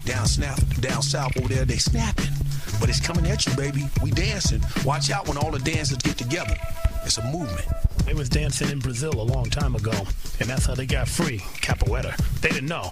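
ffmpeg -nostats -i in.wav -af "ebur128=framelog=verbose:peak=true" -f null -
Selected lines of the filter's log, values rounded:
Integrated loudness:
  I:         -24.3 LUFS
  Threshold: -34.3 LUFS
Loudness range:
  LRA:         2.0 LU
  Threshold: -44.4 LUFS
  LRA low:   -25.4 LUFS
  LRA high:  -23.4 LUFS
True peak:
  Peak:       -8.3 dBFS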